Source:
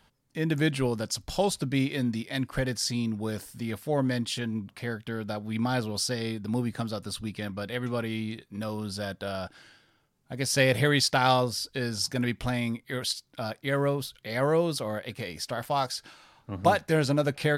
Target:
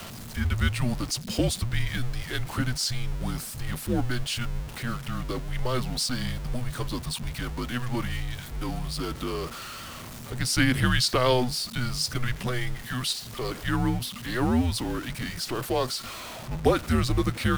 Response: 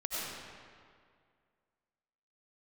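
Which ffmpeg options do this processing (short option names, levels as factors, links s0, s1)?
-af "aeval=exprs='val(0)+0.5*0.02*sgn(val(0))':c=same,afreqshift=-250"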